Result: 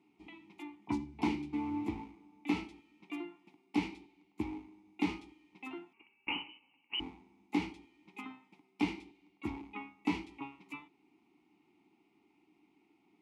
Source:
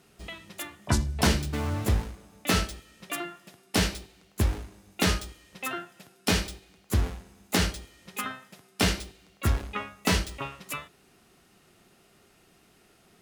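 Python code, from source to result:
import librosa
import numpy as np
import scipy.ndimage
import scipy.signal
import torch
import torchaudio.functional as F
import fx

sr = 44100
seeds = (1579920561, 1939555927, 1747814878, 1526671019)

y = fx.freq_invert(x, sr, carrier_hz=3000, at=(5.93, 7.0))
y = fx.vowel_filter(y, sr, vowel='u')
y = F.gain(torch.from_numpy(y), 3.5).numpy()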